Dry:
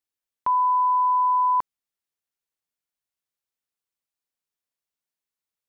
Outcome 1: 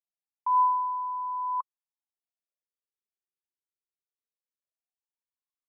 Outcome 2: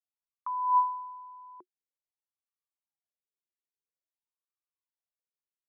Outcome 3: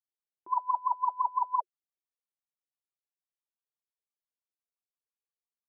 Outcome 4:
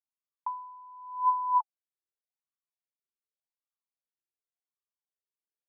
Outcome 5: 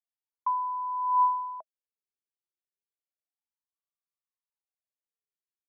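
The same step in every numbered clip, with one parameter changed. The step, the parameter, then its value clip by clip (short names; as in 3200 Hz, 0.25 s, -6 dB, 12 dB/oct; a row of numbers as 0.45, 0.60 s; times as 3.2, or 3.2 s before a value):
wah, rate: 0.21, 0.49, 5.9, 0.88, 0.31 Hz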